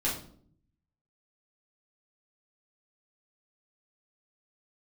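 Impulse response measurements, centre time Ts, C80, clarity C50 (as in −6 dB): 34 ms, 11.0 dB, 6.0 dB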